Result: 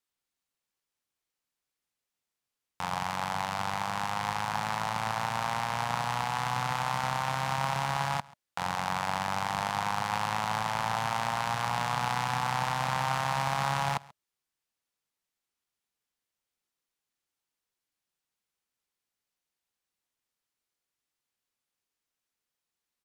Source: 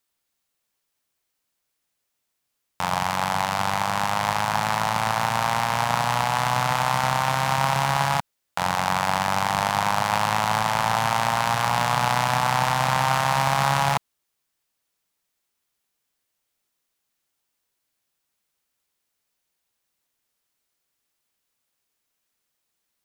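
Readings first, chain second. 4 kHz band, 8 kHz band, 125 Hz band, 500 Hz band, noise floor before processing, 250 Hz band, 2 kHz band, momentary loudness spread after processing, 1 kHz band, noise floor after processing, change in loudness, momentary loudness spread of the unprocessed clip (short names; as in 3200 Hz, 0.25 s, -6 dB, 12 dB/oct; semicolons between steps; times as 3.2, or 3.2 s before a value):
-8.5 dB, -9.5 dB, -8.0 dB, -9.5 dB, -78 dBFS, -8.0 dB, -8.0 dB, 3 LU, -8.0 dB, under -85 dBFS, -8.0 dB, 3 LU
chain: high shelf 12000 Hz -8 dB; notch 620 Hz, Q 15; echo 0.136 s -23 dB; gain -8 dB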